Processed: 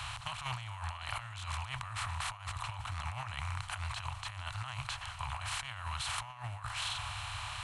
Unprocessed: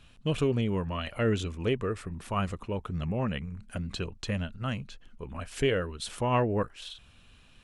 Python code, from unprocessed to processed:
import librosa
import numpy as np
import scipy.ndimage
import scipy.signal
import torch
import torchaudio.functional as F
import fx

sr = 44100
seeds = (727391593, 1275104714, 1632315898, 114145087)

y = fx.bin_compress(x, sr, power=0.4)
y = scipy.signal.sosfilt(scipy.signal.ellip(3, 1.0, 40, [110.0, 820.0], 'bandstop', fs=sr, output='sos'), y)
y = fx.echo_swing(y, sr, ms=1134, ratio=1.5, feedback_pct=58, wet_db=-21)
y = fx.over_compress(y, sr, threshold_db=-33.0, ratio=-0.5)
y = scipy.signal.sosfilt(scipy.signal.butter(2, 47.0, 'highpass', fs=sr, output='sos'), y)
y = y * librosa.db_to_amplitude(-5.0)